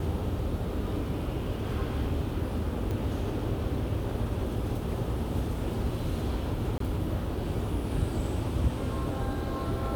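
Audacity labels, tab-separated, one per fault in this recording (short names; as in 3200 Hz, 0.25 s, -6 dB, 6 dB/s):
2.910000	2.910000	pop
6.780000	6.800000	gap 23 ms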